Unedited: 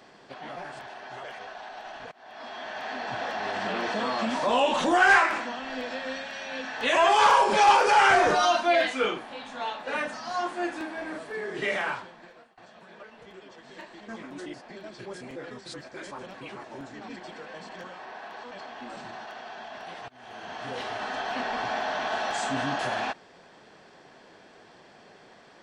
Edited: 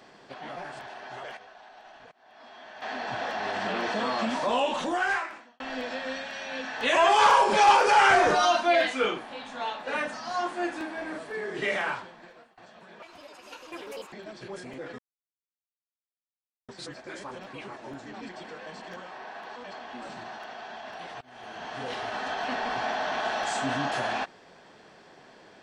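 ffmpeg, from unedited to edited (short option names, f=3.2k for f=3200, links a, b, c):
-filter_complex "[0:a]asplit=7[a][b][c][d][e][f][g];[a]atrim=end=1.372[h];[b]atrim=start=1.368:end=2.822,asetpts=PTS-STARTPTS,volume=-9dB[i];[c]atrim=start=2.818:end=5.6,asetpts=PTS-STARTPTS,afade=t=out:st=1.402:d=1.38[j];[d]atrim=start=5.6:end=13.024,asetpts=PTS-STARTPTS,afade=t=in:d=0.004:c=hsin[k];[e]atrim=start=13.02:end=14.7,asetpts=PTS-STARTPTS,asetrate=67032,aresample=44100,atrim=end_sample=48742,asetpts=PTS-STARTPTS[l];[f]atrim=start=14.696:end=15.56,asetpts=PTS-STARTPTS,afade=t=out:st=0.86:d=0.004:c=hsin,apad=pad_dur=1.7[m];[g]atrim=start=15.56,asetpts=PTS-STARTPTS,afade=t=in:d=0.004:c=hsin[n];[h][i]acrossfade=d=0.004:c1=hsin:c2=hsin[o];[j][k]concat=n=2:v=0:a=1[p];[o][p]acrossfade=d=0.004:c1=hsin:c2=hsin[q];[q][l]acrossfade=d=0.004:c1=hsin:c2=hsin[r];[m][n]concat=n=2:v=0:a=1[s];[r][s]acrossfade=d=0.004:c1=hsin:c2=hsin"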